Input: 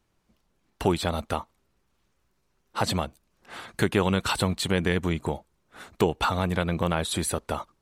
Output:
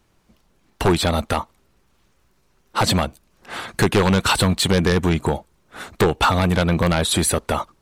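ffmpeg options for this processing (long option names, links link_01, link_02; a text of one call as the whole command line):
ffmpeg -i in.wav -af "aeval=exprs='0.447*sin(PI/2*2.82*val(0)/0.447)':channel_layout=same,volume=-3dB" out.wav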